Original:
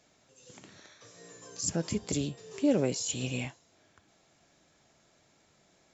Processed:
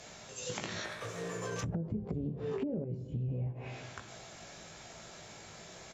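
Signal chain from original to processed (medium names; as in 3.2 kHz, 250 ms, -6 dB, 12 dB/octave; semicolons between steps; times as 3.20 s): 0.84–1.82 s: median filter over 9 samples; peaking EQ 280 Hz -8 dB 0.57 oct; doubling 18 ms -5.5 dB; peak limiter -30 dBFS, peak gain reduction 14 dB; reverberation RT60 1.4 s, pre-delay 38 ms, DRR 11.5 dB; low-pass that closes with the level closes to 350 Hz, closed at -37 dBFS; 2.84–3.29 s: peaking EQ 680 Hz -10.5 dB 2.9 oct; compression 6:1, threshold -48 dBFS, peak gain reduction 11.5 dB; trim +15 dB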